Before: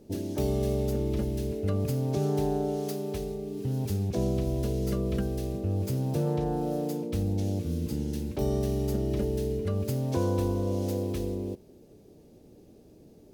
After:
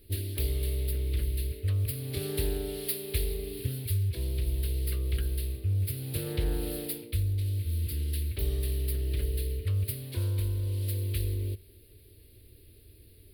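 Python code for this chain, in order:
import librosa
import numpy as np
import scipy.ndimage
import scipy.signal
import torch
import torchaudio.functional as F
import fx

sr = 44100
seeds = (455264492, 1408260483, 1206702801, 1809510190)

y = fx.curve_eq(x, sr, hz=(100.0, 170.0, 390.0, 780.0, 2000.0, 4400.0, 6300.0, 10000.0), db=(0, -26, -14, -28, -1, 1, -27, 7))
y = fx.rider(y, sr, range_db=10, speed_s=0.5)
y = fx.doppler_dist(y, sr, depth_ms=0.34)
y = F.gain(torch.from_numpy(y), 4.5).numpy()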